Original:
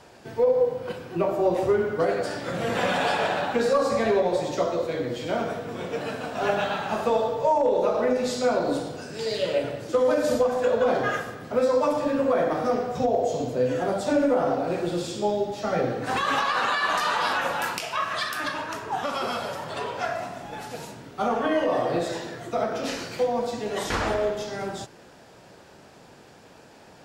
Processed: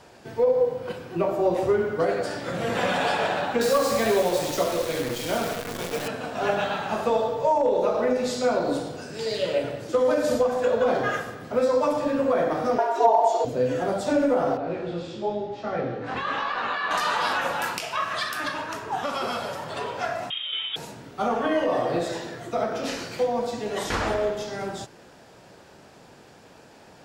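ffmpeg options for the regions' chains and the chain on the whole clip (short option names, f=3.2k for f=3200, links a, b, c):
-filter_complex "[0:a]asettb=1/sr,asplit=3[a][b][c];[a]atrim=end=3.614[d];[b]atrim=start=3.61:end=6.08,asetpts=PTS-STARTPTS,afade=t=in:d=0.004:c=qsin,afade=t=out:st=2.466:d=0.004:c=qsin,highshelf=f=3.2k:g=7.5,acrusher=bits=6:dc=4:mix=0:aa=0.000001[e];[c]atrim=start=6.076[f];[d][e]acrossfade=d=0.004:c1=hsin:c2=qsin[g];[g][f]acrossfade=d=0.004:c1=qsin:c2=hsin,asettb=1/sr,asplit=3[h][i][j];[h]atrim=end=12.784[k];[i]atrim=start=12.78:end=13.45,asetpts=PTS-STARTPTS,afade=t=in:d=0.004:c=qsin,afade=t=out:st=0.666:d=0.004:c=qsin,highshelf=f=4.8k:g=-4.5,aecho=1:1:4.1:0.98,atrim=end_sample=29547,afreqshift=200[l];[j]atrim=start=13.446[m];[k][l]acrossfade=d=0.004:c1=hsin:c2=qsin[n];[n][m]acrossfade=d=0.004:c1=qsin:c2=hsin,asettb=1/sr,asplit=3[o][p][q];[o]atrim=end=14.574[r];[p]atrim=start=14.57:end=16.91,asetpts=PTS-STARTPTS,afade=t=in:d=0.004:c=qsin,afade=t=out:st=2.336:d=0.004:c=qsin,lowpass=3.5k,flanger=delay=17:depth=7.3:speed=1[s];[q]atrim=start=16.906[t];[r][s]acrossfade=d=0.004:c1=hsin:c2=qsin[u];[u][t]acrossfade=d=0.004:c1=qsin:c2=hsin,asettb=1/sr,asplit=3[v][w][x];[v]atrim=end=20.304[y];[w]atrim=start=20.3:end=20.76,asetpts=PTS-STARTPTS,afade=t=in:d=0.004:c=qsin,afade=t=out:st=0.456:d=0.004:c=qsin,highpass=88,equalizer=f=840:t=o:w=1.3:g=9,lowpass=f=3.3k:t=q:w=0.5098,lowpass=f=3.3k:t=q:w=0.6013,lowpass=f=3.3k:t=q:w=0.9,lowpass=f=3.3k:t=q:w=2.563,afreqshift=-3900[z];[x]atrim=start=20.756[aa];[y][z]acrossfade=d=0.004:c1=hsin:c2=qsin[ab];[ab][aa]acrossfade=d=0.004:c1=qsin:c2=hsin"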